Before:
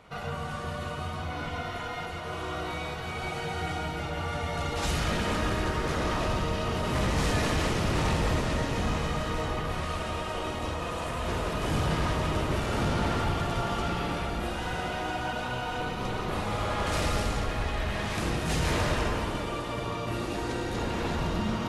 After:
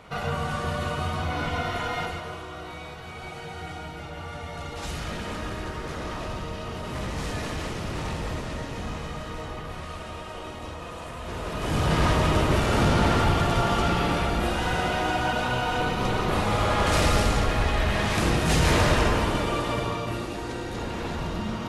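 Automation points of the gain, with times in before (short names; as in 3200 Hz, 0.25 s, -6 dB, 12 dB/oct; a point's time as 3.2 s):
2.04 s +6 dB
2.47 s -4.5 dB
11.26 s -4.5 dB
12.04 s +6.5 dB
19.71 s +6.5 dB
20.35 s -1 dB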